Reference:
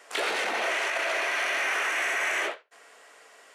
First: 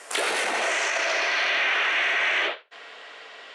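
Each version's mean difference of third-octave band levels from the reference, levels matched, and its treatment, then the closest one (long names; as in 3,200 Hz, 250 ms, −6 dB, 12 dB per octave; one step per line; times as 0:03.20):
4.0 dB: low-pass filter sweep 10,000 Hz → 3,600 Hz, 0:00.40–0:01.63
downward compressor 1.5 to 1, threshold −40 dBFS, peak gain reduction 6.5 dB
level +8 dB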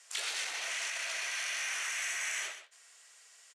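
7.0 dB: resonant band-pass 7,000 Hz, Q 1.2
on a send: single-tap delay 128 ms −11 dB
on the sum: level +3 dB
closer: first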